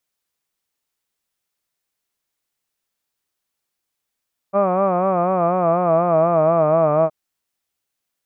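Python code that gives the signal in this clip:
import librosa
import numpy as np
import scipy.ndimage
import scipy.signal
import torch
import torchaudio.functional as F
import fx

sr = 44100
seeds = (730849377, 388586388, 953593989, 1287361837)

y = fx.vowel(sr, seeds[0], length_s=2.57, word='hud', hz=193.0, glide_st=-4.0, vibrato_hz=4.1, vibrato_st=0.9)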